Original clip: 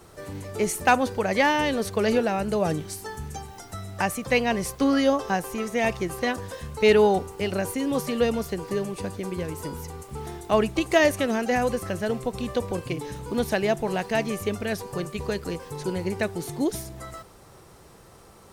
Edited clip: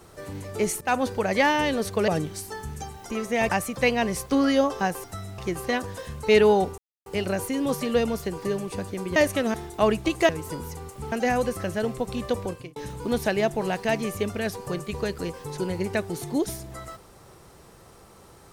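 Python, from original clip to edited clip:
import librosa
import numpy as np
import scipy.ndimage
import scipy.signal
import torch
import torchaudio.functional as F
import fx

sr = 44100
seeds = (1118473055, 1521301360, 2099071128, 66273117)

y = fx.edit(x, sr, fx.fade_in_from(start_s=0.81, length_s=0.3, curve='qsin', floor_db=-21.5),
    fx.cut(start_s=2.08, length_s=0.54),
    fx.swap(start_s=3.64, length_s=0.34, other_s=5.53, other_length_s=0.39),
    fx.insert_silence(at_s=7.32, length_s=0.28),
    fx.swap(start_s=9.42, length_s=0.83, other_s=11.0, other_length_s=0.38),
    fx.fade_out_span(start_s=12.67, length_s=0.35), tone=tone)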